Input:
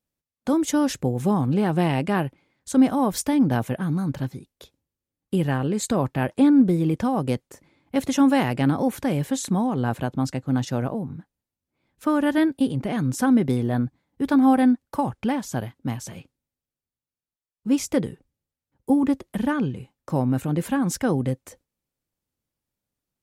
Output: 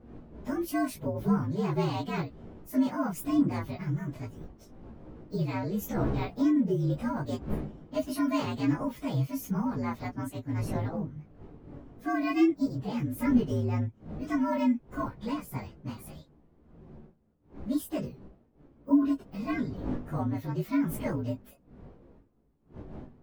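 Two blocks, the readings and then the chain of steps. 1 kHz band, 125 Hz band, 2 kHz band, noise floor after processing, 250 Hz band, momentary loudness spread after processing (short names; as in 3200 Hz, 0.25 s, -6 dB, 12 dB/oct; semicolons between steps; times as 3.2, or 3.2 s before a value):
-9.0 dB, -6.5 dB, -8.0 dB, -62 dBFS, -7.5 dB, 18 LU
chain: inharmonic rescaling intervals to 117%; wind noise 270 Hz -39 dBFS; chorus voices 4, 0.11 Hz, delay 17 ms, depth 4.1 ms; gain -2.5 dB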